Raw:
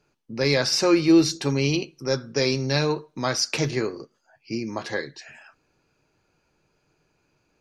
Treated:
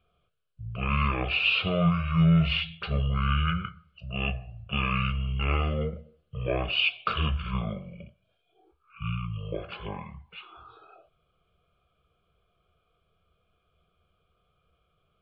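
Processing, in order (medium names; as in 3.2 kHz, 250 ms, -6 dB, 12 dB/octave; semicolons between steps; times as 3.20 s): speed mistake 15 ips tape played at 7.5 ips; static phaser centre 1.3 kHz, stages 8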